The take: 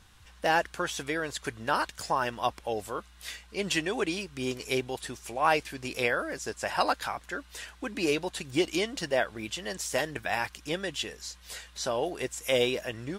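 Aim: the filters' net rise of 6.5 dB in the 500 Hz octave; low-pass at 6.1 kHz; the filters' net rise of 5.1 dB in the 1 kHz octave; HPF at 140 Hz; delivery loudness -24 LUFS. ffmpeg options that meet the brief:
-af "highpass=140,lowpass=6100,equalizer=f=500:t=o:g=7,equalizer=f=1000:t=o:g=4,volume=1.33"

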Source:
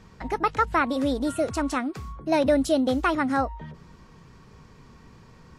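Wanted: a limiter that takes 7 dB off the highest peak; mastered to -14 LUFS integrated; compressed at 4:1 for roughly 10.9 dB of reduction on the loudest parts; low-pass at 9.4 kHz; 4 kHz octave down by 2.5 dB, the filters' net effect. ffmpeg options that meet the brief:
-af "lowpass=9400,equalizer=f=4000:t=o:g=-3,acompressor=threshold=0.0282:ratio=4,volume=12.6,alimiter=limit=0.596:level=0:latency=1"

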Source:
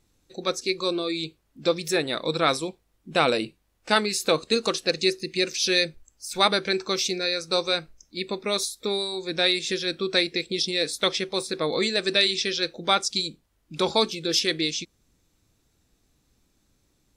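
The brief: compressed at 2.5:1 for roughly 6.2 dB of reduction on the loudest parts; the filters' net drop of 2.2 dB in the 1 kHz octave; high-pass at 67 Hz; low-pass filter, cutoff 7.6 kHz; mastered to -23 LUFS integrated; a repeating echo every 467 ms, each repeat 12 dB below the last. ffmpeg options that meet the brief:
-af "highpass=67,lowpass=7600,equalizer=f=1000:t=o:g=-3,acompressor=threshold=0.0501:ratio=2.5,aecho=1:1:467|934|1401:0.251|0.0628|0.0157,volume=2"

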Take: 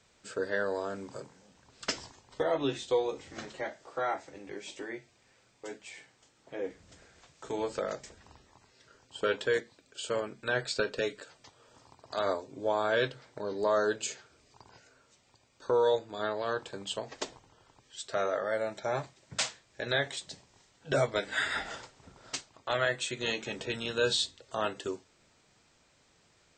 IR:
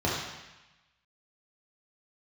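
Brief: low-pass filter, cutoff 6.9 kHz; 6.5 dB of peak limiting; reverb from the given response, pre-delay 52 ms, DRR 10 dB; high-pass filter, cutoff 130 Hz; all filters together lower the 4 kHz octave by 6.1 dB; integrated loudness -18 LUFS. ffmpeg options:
-filter_complex "[0:a]highpass=130,lowpass=6900,equalizer=f=4000:t=o:g=-7,alimiter=limit=0.075:level=0:latency=1,asplit=2[s0][s1];[1:a]atrim=start_sample=2205,adelay=52[s2];[s1][s2]afir=irnorm=-1:irlink=0,volume=0.075[s3];[s0][s3]amix=inputs=2:normalize=0,volume=7.94"

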